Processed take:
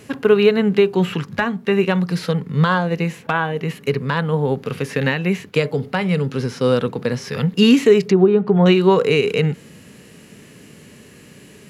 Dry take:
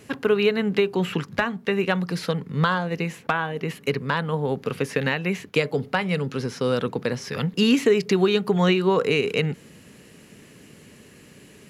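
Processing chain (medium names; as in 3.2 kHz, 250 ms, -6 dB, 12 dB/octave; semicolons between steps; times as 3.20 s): 8.06–8.66 s: low-pass that closes with the level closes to 920 Hz, closed at -15.5 dBFS; harmonic-percussive split harmonic +7 dB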